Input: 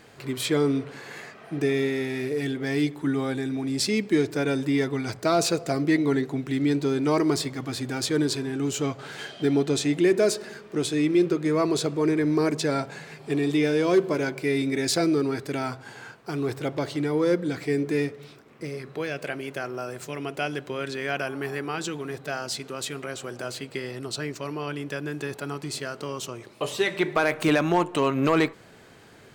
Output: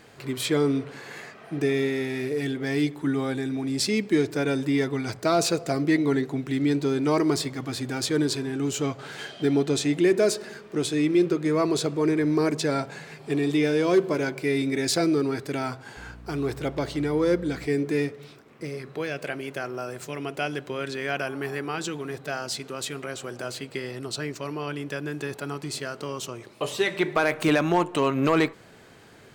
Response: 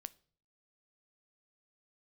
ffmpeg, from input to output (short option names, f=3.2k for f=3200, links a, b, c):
-filter_complex "[0:a]asettb=1/sr,asplit=3[a][b][c];[a]atrim=end=15.974[d];[b]atrim=start=15.97:end=17.67,asetpts=PTS-STARTPTS,afade=t=in:d=0.004:c=qsin,afade=t=out:st=1.696:d=0.004:c=qsin,aeval=exprs='val(0)+0.00708*(sin(2*PI*60*n/s)+sin(2*PI*2*60*n/s)/2+sin(2*PI*3*60*n/s)/3+sin(2*PI*4*60*n/s)/4+sin(2*PI*5*60*n/s)/5)':c=same[e];[c]atrim=start=17.666[f];[d][e]acrossfade=d=0.004:c1=hsin:c2=qsin[g];[g][f]acrossfade=d=0.004:c1=qsin:c2=hsin"